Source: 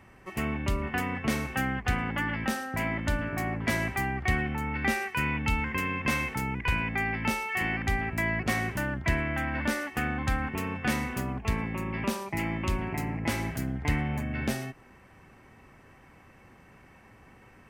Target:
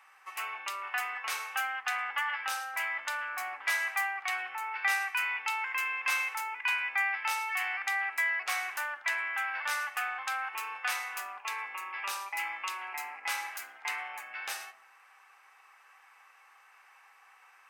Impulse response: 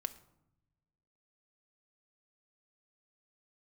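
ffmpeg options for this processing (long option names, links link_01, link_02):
-filter_complex "[0:a]highpass=frequency=860:width=0.5412,highpass=frequency=860:width=1.3066[link_01];[1:a]atrim=start_sample=2205,asetrate=79380,aresample=44100[link_02];[link_01][link_02]afir=irnorm=-1:irlink=0,volume=7dB"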